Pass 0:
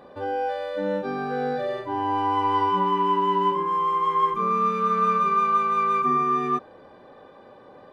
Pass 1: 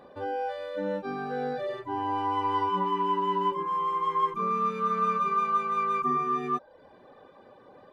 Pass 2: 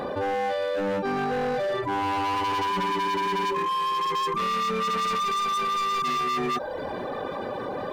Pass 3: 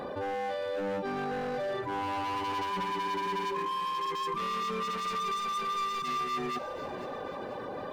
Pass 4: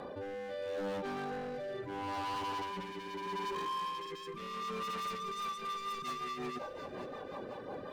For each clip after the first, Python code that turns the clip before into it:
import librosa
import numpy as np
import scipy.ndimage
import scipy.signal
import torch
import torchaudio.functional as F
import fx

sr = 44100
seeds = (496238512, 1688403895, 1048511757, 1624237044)

y1 = fx.dereverb_blind(x, sr, rt60_s=0.54)
y1 = F.gain(torch.from_numpy(y1), -3.5).numpy()
y2 = np.clip(10.0 ** (31.5 / 20.0) * y1, -1.0, 1.0) / 10.0 ** (31.5 / 20.0)
y2 = fx.env_flatten(y2, sr, amount_pct=70)
y2 = F.gain(torch.from_numpy(y2), 6.5).numpy()
y3 = fx.echo_feedback(y2, sr, ms=491, feedback_pct=45, wet_db=-13.0)
y3 = F.gain(torch.from_numpy(y3), -7.0).numpy()
y4 = fx.rotary_switch(y3, sr, hz=0.75, then_hz=5.5, switch_at_s=4.92)
y4 = 10.0 ** (-30.0 / 20.0) * (np.abs((y4 / 10.0 ** (-30.0 / 20.0) + 3.0) % 4.0 - 2.0) - 1.0)
y4 = F.gain(torch.from_numpy(y4), -3.0).numpy()